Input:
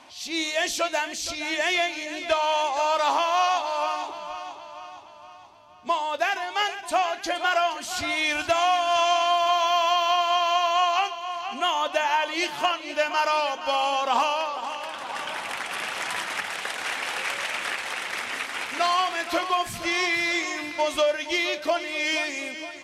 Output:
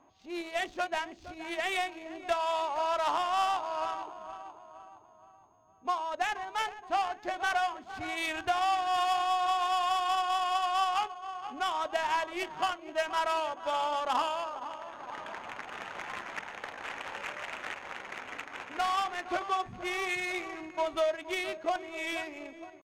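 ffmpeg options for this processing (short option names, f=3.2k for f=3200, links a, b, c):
-af "asetrate=46722,aresample=44100,atempo=0.943874,aeval=exprs='val(0)+0.0126*sin(2*PI*6500*n/s)':c=same,adynamicsmooth=sensitivity=1.5:basefreq=850,volume=-6dB"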